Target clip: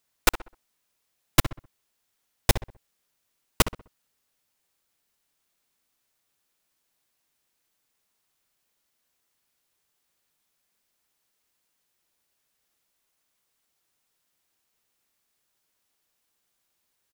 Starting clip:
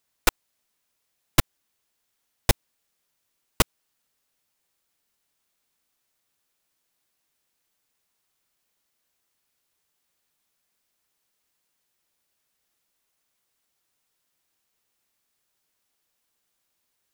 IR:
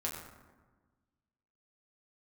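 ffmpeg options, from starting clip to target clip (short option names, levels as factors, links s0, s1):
-filter_complex "[0:a]asplit=2[s0][s1];[s1]adelay=64,lowpass=f=2100:p=1,volume=0.282,asplit=2[s2][s3];[s3]adelay=64,lowpass=f=2100:p=1,volume=0.36,asplit=2[s4][s5];[s5]adelay=64,lowpass=f=2100:p=1,volume=0.36,asplit=2[s6][s7];[s7]adelay=64,lowpass=f=2100:p=1,volume=0.36[s8];[s0][s2][s4][s6][s8]amix=inputs=5:normalize=0"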